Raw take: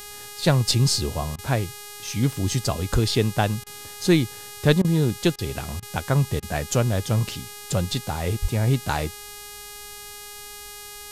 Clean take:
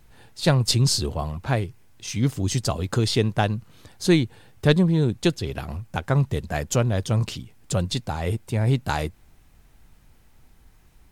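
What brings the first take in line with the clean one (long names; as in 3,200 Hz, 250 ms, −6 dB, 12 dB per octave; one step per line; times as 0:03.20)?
hum removal 412.8 Hz, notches 34
0:02.92–0:03.04: high-pass filter 140 Hz 24 dB per octave
0:08.41–0:08.53: high-pass filter 140 Hz 24 dB per octave
repair the gap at 0:01.36/0:03.64/0:04.82/0:05.36/0:05.80/0:06.40, 24 ms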